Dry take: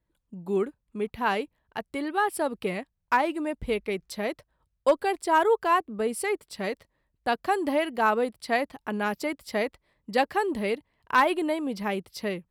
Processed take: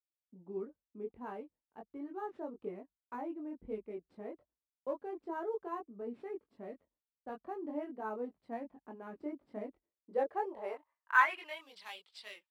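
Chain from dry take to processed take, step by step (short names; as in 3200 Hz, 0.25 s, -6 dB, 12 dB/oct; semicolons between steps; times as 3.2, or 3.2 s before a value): gate with hold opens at -55 dBFS; graphic EQ 125/250/1000/8000 Hz -11/-7/+3/-11 dB; sample-rate reducer 13000 Hz, jitter 0%; chorus voices 4, 0.33 Hz, delay 22 ms, depth 1.7 ms; band-pass sweep 250 Hz -> 3500 Hz, 9.87–11.67; gain +1 dB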